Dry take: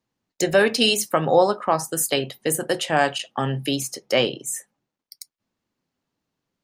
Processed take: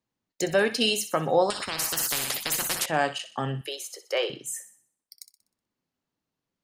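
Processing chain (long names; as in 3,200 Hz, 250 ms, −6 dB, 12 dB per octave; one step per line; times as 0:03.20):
0:03.61–0:04.30: Chebyshev high-pass with heavy ripple 340 Hz, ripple 3 dB
feedback echo with a high-pass in the loop 62 ms, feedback 45%, high-pass 950 Hz, level −12 dB
0:01.50–0:02.86: every bin compressed towards the loudest bin 10 to 1
level −5.5 dB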